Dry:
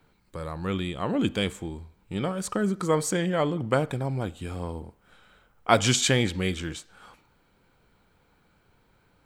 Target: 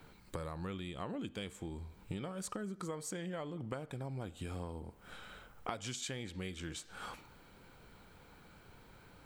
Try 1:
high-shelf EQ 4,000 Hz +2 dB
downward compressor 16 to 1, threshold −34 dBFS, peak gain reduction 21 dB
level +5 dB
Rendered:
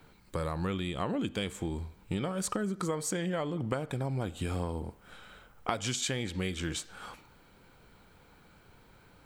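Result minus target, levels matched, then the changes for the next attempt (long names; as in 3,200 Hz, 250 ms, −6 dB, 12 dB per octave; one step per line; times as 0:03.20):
downward compressor: peak gain reduction −9 dB
change: downward compressor 16 to 1, threshold −43.5 dBFS, peak gain reduction 30 dB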